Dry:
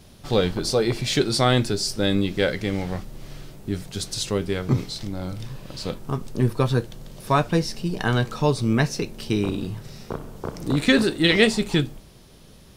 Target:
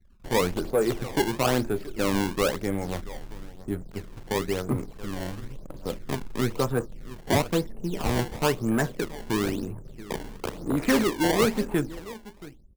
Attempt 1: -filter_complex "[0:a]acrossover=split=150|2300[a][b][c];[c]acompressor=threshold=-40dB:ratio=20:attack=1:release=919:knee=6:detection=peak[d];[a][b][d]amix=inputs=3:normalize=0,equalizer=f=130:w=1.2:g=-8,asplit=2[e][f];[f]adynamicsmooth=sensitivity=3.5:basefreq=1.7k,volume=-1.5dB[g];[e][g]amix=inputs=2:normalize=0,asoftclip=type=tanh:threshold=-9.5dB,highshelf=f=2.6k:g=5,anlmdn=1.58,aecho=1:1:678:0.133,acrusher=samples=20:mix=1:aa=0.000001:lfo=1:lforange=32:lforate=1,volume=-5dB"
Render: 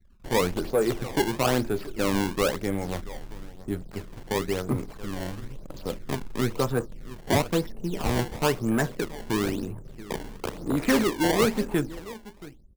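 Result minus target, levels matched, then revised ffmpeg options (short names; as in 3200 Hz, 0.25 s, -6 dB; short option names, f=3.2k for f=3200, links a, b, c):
compressor: peak gain reduction -6 dB
-filter_complex "[0:a]acrossover=split=150|2300[a][b][c];[c]acompressor=threshold=-46.5dB:ratio=20:attack=1:release=919:knee=6:detection=peak[d];[a][b][d]amix=inputs=3:normalize=0,equalizer=f=130:w=1.2:g=-8,asplit=2[e][f];[f]adynamicsmooth=sensitivity=3.5:basefreq=1.7k,volume=-1.5dB[g];[e][g]amix=inputs=2:normalize=0,asoftclip=type=tanh:threshold=-9.5dB,highshelf=f=2.6k:g=5,anlmdn=1.58,aecho=1:1:678:0.133,acrusher=samples=20:mix=1:aa=0.000001:lfo=1:lforange=32:lforate=1,volume=-5dB"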